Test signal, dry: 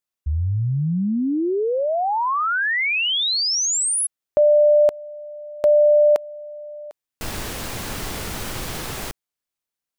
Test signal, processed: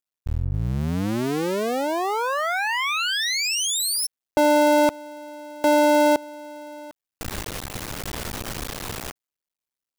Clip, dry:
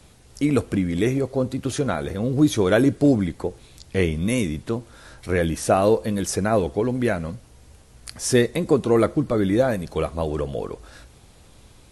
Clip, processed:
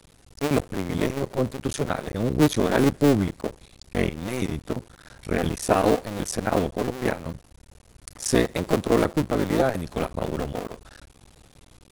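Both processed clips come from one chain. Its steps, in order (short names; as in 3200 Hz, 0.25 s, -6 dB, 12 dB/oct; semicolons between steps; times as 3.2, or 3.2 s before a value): cycle switcher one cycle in 2, muted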